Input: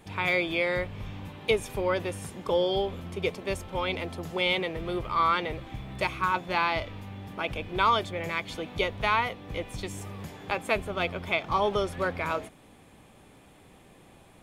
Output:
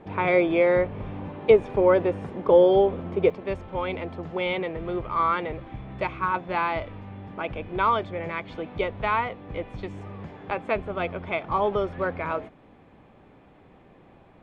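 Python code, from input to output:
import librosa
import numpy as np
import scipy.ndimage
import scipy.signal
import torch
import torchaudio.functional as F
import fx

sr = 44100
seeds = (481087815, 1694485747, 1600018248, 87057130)

y = scipy.signal.sosfilt(scipy.signal.butter(2, 2200.0, 'lowpass', fs=sr, output='sos'), x)
y = fx.peak_eq(y, sr, hz=440.0, db=fx.steps((0.0, 10.0), (3.3, 2.5)), octaves=2.8)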